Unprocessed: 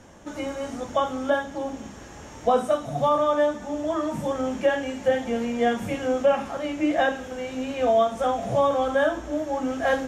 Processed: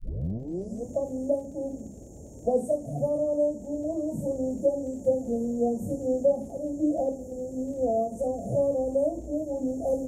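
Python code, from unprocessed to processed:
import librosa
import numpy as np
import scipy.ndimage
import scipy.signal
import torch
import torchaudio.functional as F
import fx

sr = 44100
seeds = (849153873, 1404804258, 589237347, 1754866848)

y = fx.tape_start_head(x, sr, length_s=0.87)
y = scipy.signal.sosfilt(scipy.signal.ellip(3, 1.0, 50, [610.0, 7100.0], 'bandstop', fs=sr, output='sos'), y)
y = fx.peak_eq(y, sr, hz=2000.0, db=-11.5, octaves=2.0)
y = fx.dmg_crackle(y, sr, seeds[0], per_s=56.0, level_db=-52.0)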